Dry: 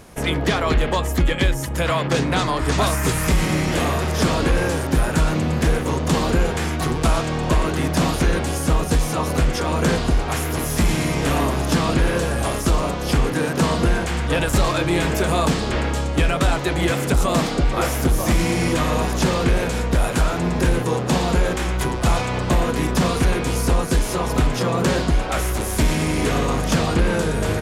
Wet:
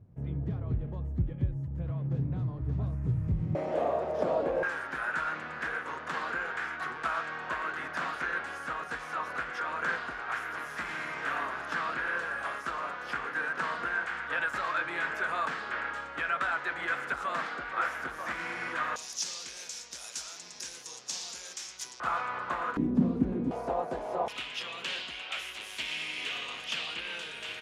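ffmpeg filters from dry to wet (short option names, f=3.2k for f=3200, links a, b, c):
-af "asetnsamples=n=441:p=0,asendcmd='3.55 bandpass f 610;4.63 bandpass f 1500;18.96 bandpass f 5800;22 bandpass f 1300;22.77 bandpass f 240;23.51 bandpass f 700;24.28 bandpass f 2900',bandpass=f=110:t=q:w=3.6:csg=0"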